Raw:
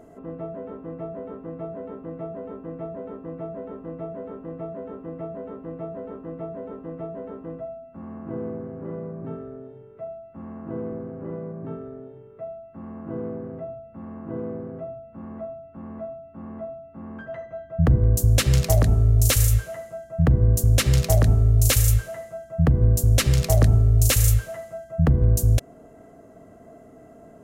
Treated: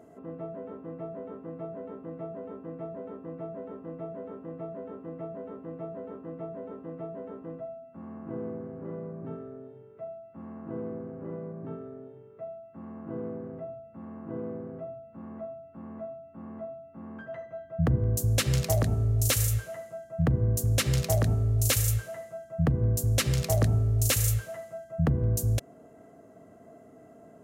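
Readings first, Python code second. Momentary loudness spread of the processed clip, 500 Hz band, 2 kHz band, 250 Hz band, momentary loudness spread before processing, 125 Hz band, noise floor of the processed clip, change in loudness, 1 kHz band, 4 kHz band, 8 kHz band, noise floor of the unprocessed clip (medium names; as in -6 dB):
18 LU, -4.5 dB, -4.5 dB, -5.0 dB, 20 LU, -6.5 dB, -53 dBFS, -9.5 dB, -4.5 dB, -4.5 dB, -4.5 dB, -48 dBFS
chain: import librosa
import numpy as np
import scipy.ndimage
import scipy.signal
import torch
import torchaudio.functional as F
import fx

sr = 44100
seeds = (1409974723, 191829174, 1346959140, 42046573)

y = scipy.signal.sosfilt(scipy.signal.butter(2, 92.0, 'highpass', fs=sr, output='sos'), x)
y = y * 10.0 ** (-4.5 / 20.0)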